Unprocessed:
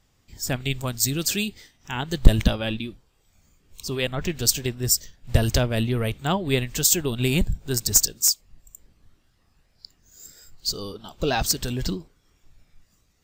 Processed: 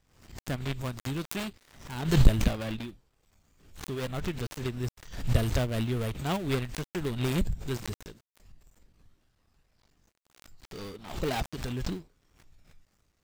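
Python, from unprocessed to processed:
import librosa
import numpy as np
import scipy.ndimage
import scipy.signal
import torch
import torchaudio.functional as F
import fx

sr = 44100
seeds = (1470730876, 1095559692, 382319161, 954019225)

y = fx.dead_time(x, sr, dead_ms=0.22)
y = fx.pre_swell(y, sr, db_per_s=92.0)
y = y * librosa.db_to_amplitude(-6.0)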